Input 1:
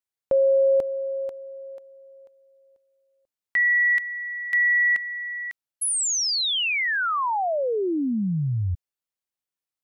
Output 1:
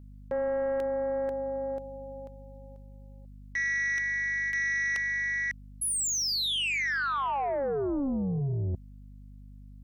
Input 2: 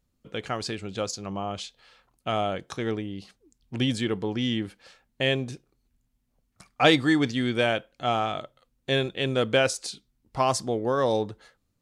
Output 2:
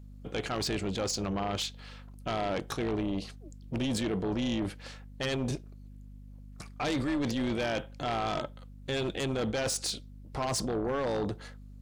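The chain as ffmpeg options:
-af "equalizer=f=300:t=o:w=1:g=3.5,areverse,acompressor=threshold=0.02:ratio=5:attack=15:release=32:knee=1:detection=rms,areverse,tremolo=f=280:d=0.71,aeval=exprs='val(0)+0.00178*(sin(2*PI*50*n/s)+sin(2*PI*2*50*n/s)/2+sin(2*PI*3*50*n/s)/3+sin(2*PI*4*50*n/s)/4+sin(2*PI*5*50*n/s)/5)':c=same,aeval=exprs='0.0944*sin(PI/2*2.82*val(0)/0.0944)':c=same,volume=0.596"

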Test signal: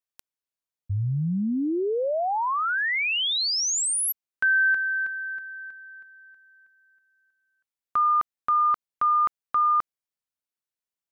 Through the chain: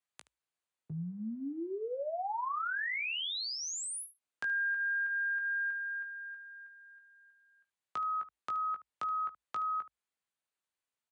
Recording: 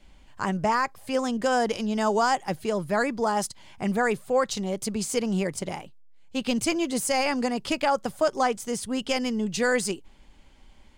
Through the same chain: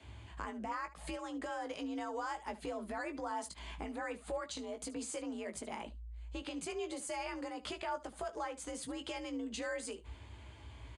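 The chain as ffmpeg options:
-af "equalizer=f=5400:w=6:g=-9,acompressor=threshold=0.0141:ratio=12:attack=0.96:release=228:knee=1:detection=peak,aresample=22050,aresample=44100,equalizer=f=1300:w=0.35:g=4.5,afreqshift=57,aecho=1:1:18|74:0.422|0.141,volume=0.841"

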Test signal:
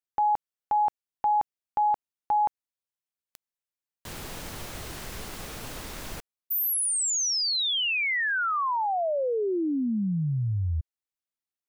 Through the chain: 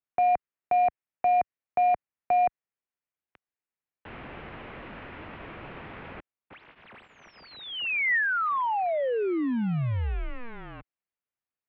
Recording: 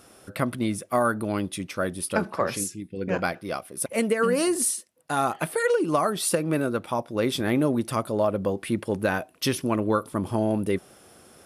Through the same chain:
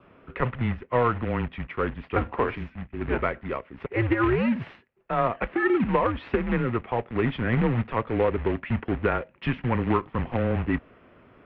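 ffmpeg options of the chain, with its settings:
-af "acrusher=bits=2:mode=log:mix=0:aa=0.000001,highpass=f=160:t=q:w=0.5412,highpass=f=160:t=q:w=1.307,lowpass=f=2800:t=q:w=0.5176,lowpass=f=2800:t=q:w=0.7071,lowpass=f=2800:t=q:w=1.932,afreqshift=-120,adynamicequalizer=threshold=0.00447:dfrequency=1900:dqfactor=6:tfrequency=1900:tqfactor=6:attack=5:release=100:ratio=0.375:range=2:mode=boostabove:tftype=bell"

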